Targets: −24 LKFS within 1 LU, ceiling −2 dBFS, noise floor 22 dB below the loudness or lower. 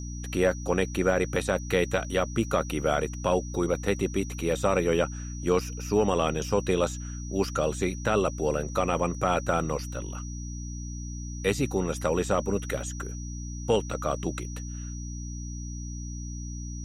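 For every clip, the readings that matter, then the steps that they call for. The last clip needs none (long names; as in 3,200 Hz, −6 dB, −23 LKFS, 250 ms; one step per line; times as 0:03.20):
mains hum 60 Hz; hum harmonics up to 300 Hz; level of the hum −34 dBFS; interfering tone 5,800 Hz; level of the tone −44 dBFS; integrated loudness −28.5 LKFS; sample peak −10.0 dBFS; target loudness −24.0 LKFS
→ hum removal 60 Hz, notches 5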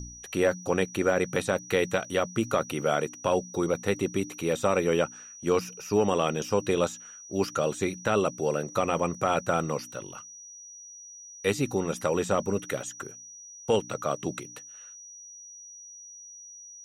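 mains hum none found; interfering tone 5,800 Hz; level of the tone −44 dBFS
→ notch filter 5,800 Hz, Q 30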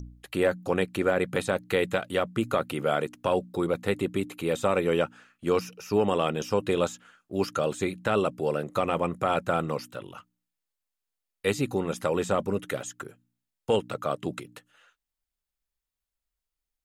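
interfering tone none found; integrated loudness −28.0 LKFS; sample peak −11.0 dBFS; target loudness −24.0 LKFS
→ level +4 dB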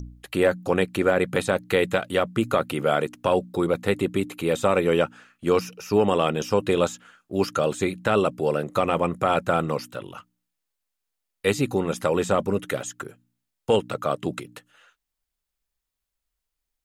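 integrated loudness −24.0 LKFS; sample peak −7.0 dBFS; background noise floor −83 dBFS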